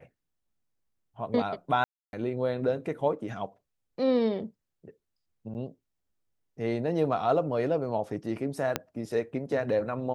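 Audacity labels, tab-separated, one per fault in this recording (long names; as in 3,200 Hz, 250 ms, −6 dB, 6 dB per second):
1.840000	2.130000	drop-out 291 ms
5.540000	5.550000	drop-out 9.1 ms
8.760000	8.760000	click −11 dBFS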